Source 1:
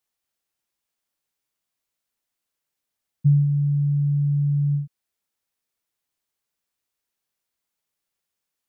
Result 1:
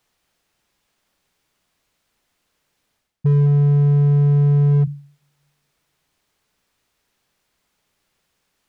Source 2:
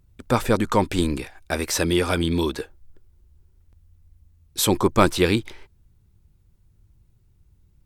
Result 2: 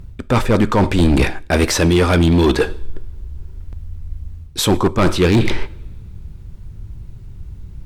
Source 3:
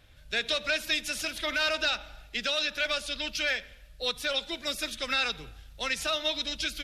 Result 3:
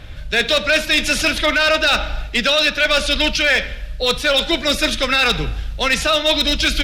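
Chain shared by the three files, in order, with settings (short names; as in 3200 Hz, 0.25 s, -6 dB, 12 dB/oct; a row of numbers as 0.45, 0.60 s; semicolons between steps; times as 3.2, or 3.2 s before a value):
high shelf 7000 Hz -12 dB; two-slope reverb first 0.5 s, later 1.6 s, from -26 dB, DRR 15.5 dB; reverse; compressor 6:1, threshold -32 dBFS; reverse; low shelf 180 Hz +5 dB; overloaded stage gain 29 dB; match loudness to -16 LUFS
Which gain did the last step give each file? +17.0, +20.5, +20.0 dB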